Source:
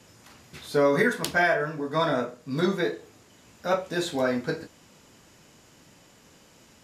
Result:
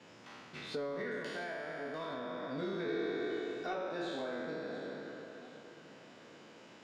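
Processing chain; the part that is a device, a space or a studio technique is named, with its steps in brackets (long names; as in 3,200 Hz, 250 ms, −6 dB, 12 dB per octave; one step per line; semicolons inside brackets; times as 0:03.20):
peak hold with a decay on every bin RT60 2.04 s
AM radio (band-pass filter 190–3,600 Hz; downward compressor 5 to 1, threshold −32 dBFS, peak gain reduction 15 dB; soft clipping −22.5 dBFS, distortion −26 dB; amplitude tremolo 0.3 Hz, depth 31%)
0:02.88–0:03.75: comb filter 2.7 ms, depth 79%
dynamic equaliser 1,300 Hz, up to −4 dB, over −46 dBFS, Q 0.79
delay that swaps between a low-pass and a high-pass 348 ms, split 1,300 Hz, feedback 69%, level −10 dB
level −2.5 dB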